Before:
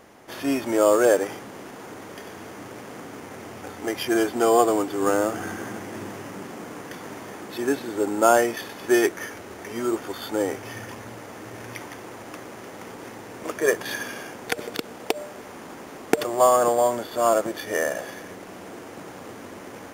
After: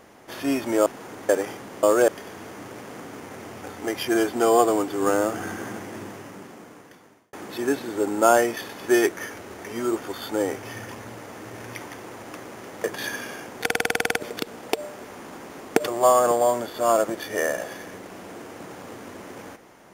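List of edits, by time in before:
0.86–1.11 swap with 1.65–2.08
5.72–7.33 fade out
12.84–13.71 cut
14.52 stutter 0.05 s, 11 plays

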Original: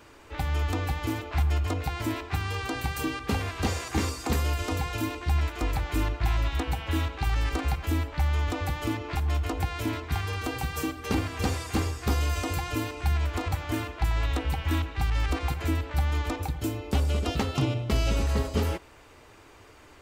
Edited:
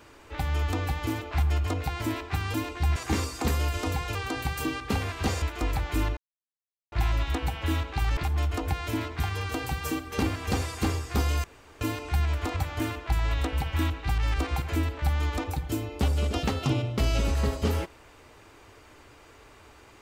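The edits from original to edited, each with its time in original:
2.54–3.81 swap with 5–5.42
6.17 insert silence 0.75 s
7.42–9.09 cut
12.36–12.73 room tone

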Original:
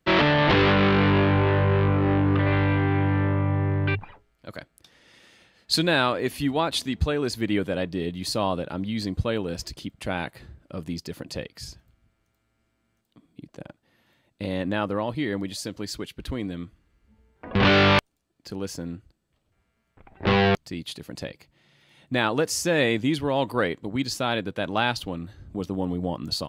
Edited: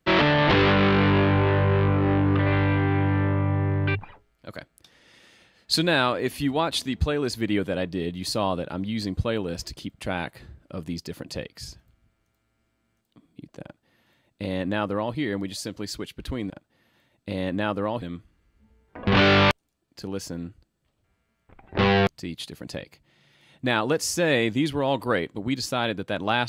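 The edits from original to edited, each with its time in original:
13.63–15.15 copy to 16.5

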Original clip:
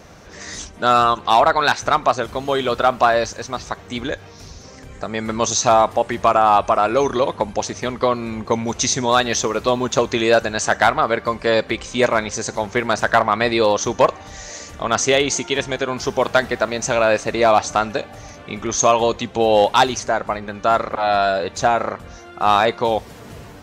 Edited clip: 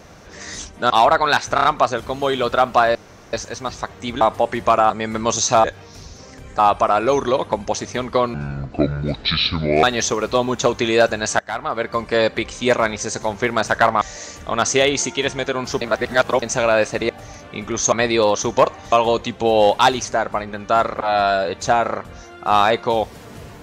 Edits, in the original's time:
0.9–1.25 cut
1.9 stutter 0.03 s, 4 plays
3.21 insert room tone 0.38 s
4.09–5.04 swap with 5.78–6.47
8.22–9.16 speed 63%
10.72–11.36 fade in, from -22.5 dB
13.34–14.34 move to 18.87
16.14–16.75 reverse
17.42–18.04 cut

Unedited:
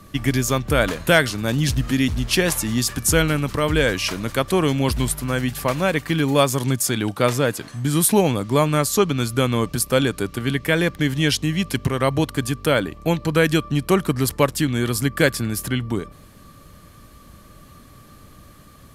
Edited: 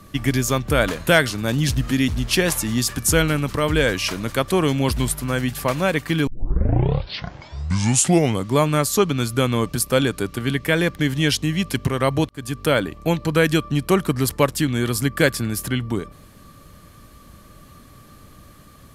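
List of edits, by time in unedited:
6.27 tape start 2.23 s
12.29–12.61 fade in

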